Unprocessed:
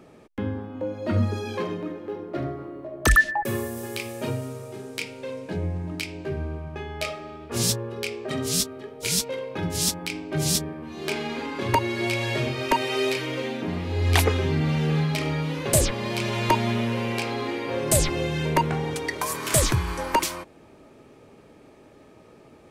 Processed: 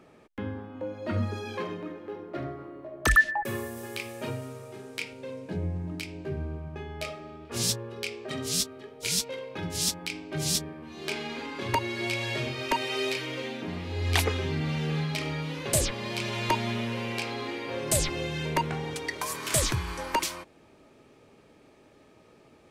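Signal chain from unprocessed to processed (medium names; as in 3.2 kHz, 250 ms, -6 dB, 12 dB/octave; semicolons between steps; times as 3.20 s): peaking EQ 1.8 kHz +4.5 dB 2.6 oct, from 5.13 s 150 Hz, from 7.45 s 3.9 kHz; trim -6.5 dB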